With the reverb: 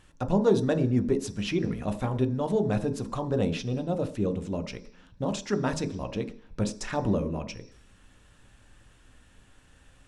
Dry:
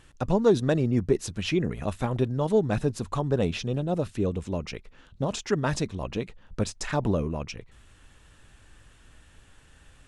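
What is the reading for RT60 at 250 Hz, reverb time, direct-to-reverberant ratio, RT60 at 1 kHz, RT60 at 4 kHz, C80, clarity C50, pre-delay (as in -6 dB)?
0.50 s, 0.50 s, 7.5 dB, 0.50 s, 0.85 s, 18.0 dB, 15.0 dB, 3 ms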